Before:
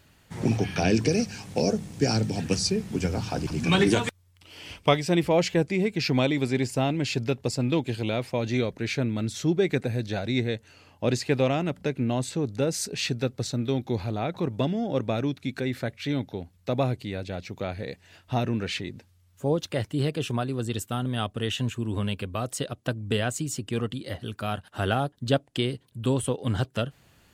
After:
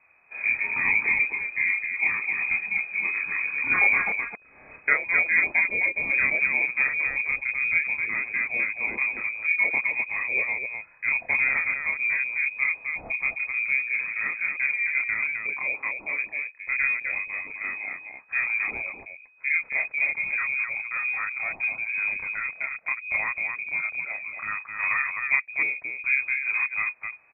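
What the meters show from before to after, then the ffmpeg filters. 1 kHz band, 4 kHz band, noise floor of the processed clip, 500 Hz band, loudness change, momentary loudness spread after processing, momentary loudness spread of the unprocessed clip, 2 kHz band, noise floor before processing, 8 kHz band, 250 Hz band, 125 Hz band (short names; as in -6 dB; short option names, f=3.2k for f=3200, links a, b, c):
-4.0 dB, under -40 dB, -53 dBFS, -18.0 dB, +3.5 dB, 9 LU, 9 LU, +15.0 dB, -61 dBFS, under -40 dB, -22.5 dB, under -25 dB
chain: -af "lowpass=f=2.2k:t=q:w=0.5098,lowpass=f=2.2k:t=q:w=0.6013,lowpass=f=2.2k:t=q:w=0.9,lowpass=f=2.2k:t=q:w=2.563,afreqshift=-2600,aecho=1:1:29.15|259.5:0.891|0.631,volume=-3dB"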